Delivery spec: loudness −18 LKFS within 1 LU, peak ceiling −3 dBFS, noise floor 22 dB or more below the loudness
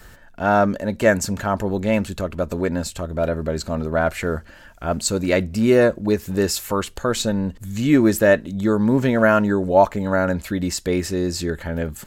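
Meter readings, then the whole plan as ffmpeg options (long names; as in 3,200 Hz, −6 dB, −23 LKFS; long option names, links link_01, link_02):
integrated loudness −20.5 LKFS; sample peak −3.0 dBFS; target loudness −18.0 LKFS
→ -af "volume=2.5dB,alimiter=limit=-3dB:level=0:latency=1"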